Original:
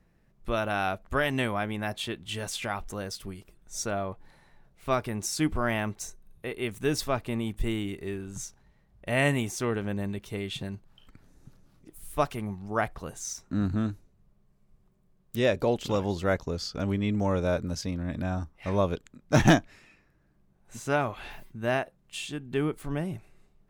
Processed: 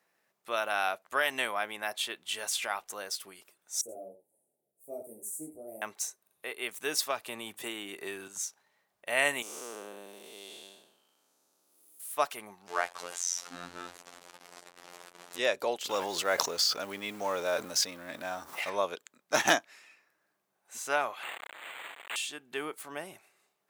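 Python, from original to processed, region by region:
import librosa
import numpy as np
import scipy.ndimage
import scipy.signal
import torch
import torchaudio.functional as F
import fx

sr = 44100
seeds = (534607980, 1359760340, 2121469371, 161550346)

y = fx.chain(x, sr, fx.cheby2_bandstop(low_hz=1000.0, high_hz=5300.0, order=4, stop_db=40),
    fx.echo_single(ms=77, db=-10.0),
    fx.detune_double(cents=29), at=(3.81, 5.82))
y = fx.chain(y, sr, fx.notch(hz=2100.0, q=19.0),
    fx.band_squash(depth_pct=100), at=(7.1, 8.28))
y = fx.chain(y, sr, fx.spec_blur(span_ms=341.0),
    fx.highpass(hz=230.0, slope=12),
    fx.peak_eq(hz=1900.0, db=-11.5, octaves=0.93), at=(9.42, 12.0))
y = fx.chain(y, sr, fx.zero_step(step_db=-34.0),
    fx.lowpass(hz=7900.0, slope=12),
    fx.robotise(hz=87.9), at=(12.67, 15.39))
y = fx.chain(y, sr, fx.law_mismatch(coded='mu'),
    fx.sustainer(db_per_s=21.0), at=(15.89, 18.7))
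y = fx.chain(y, sr, fx.clip_1bit(),
    fx.steep_highpass(hz=1900.0, slope=48),
    fx.resample_linear(factor=8), at=(21.23, 22.16))
y = scipy.signal.sosfilt(scipy.signal.butter(2, 650.0, 'highpass', fs=sr, output='sos'), y)
y = fx.high_shelf(y, sr, hz=6200.0, db=7.0)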